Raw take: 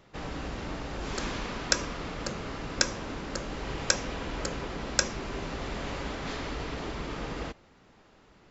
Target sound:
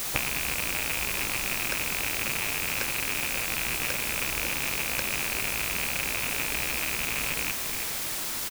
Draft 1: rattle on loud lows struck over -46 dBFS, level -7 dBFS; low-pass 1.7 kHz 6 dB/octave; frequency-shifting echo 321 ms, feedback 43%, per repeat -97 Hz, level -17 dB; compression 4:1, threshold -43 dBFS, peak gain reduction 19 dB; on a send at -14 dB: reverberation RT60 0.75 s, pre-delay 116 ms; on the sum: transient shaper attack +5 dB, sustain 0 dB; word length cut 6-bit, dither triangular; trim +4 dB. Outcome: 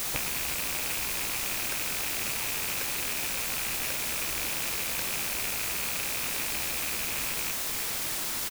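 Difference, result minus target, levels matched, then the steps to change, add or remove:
compression: peak gain reduction +6.5 dB
change: compression 4:1, threshold -34.5 dBFS, peak gain reduction 12.5 dB

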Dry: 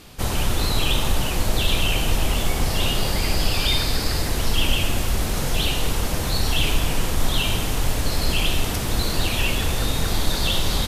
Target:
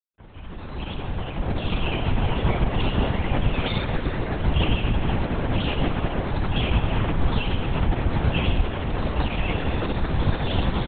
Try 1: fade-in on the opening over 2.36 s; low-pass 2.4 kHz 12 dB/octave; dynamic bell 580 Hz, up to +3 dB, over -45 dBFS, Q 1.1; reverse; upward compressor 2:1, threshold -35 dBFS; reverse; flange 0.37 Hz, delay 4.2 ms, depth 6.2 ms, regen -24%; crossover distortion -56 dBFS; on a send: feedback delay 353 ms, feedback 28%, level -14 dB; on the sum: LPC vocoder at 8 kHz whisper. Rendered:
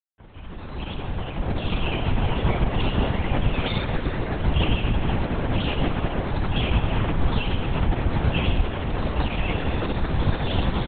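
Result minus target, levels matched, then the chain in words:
crossover distortion: distortion +6 dB
fade-in on the opening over 2.36 s; low-pass 2.4 kHz 12 dB/octave; dynamic bell 580 Hz, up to +3 dB, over -45 dBFS, Q 1.1; reverse; upward compressor 2:1, threshold -35 dBFS; reverse; flange 0.37 Hz, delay 4.2 ms, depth 6.2 ms, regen -24%; crossover distortion -62.5 dBFS; on a send: feedback delay 353 ms, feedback 28%, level -14 dB; on the sum: LPC vocoder at 8 kHz whisper

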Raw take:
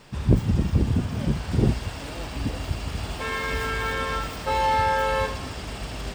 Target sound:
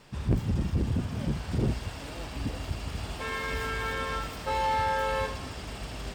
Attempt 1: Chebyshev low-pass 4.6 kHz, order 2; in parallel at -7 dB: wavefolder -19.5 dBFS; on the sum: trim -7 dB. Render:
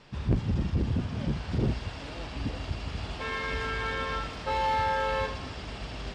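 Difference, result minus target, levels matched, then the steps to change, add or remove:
8 kHz band -6.5 dB
change: Chebyshev low-pass 17 kHz, order 2

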